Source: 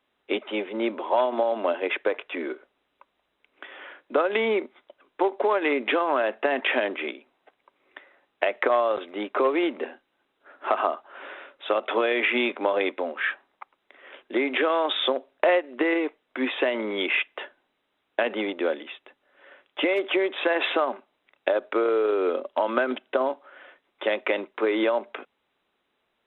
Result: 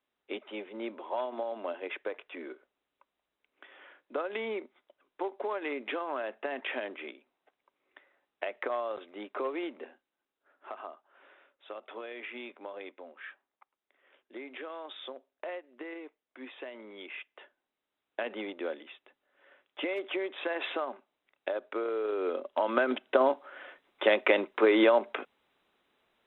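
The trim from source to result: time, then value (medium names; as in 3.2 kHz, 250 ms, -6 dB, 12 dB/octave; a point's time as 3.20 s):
9.56 s -11.5 dB
10.75 s -19 dB
17.13 s -19 dB
18.26 s -10 dB
21.94 s -10 dB
23.30 s +1 dB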